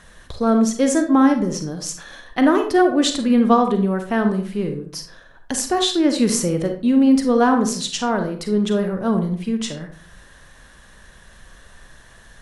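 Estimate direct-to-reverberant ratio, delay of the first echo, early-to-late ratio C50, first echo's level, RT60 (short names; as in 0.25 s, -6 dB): 5.5 dB, none, 8.0 dB, none, 0.45 s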